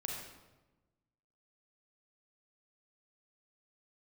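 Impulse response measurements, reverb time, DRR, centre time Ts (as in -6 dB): 1.1 s, -1.0 dB, 61 ms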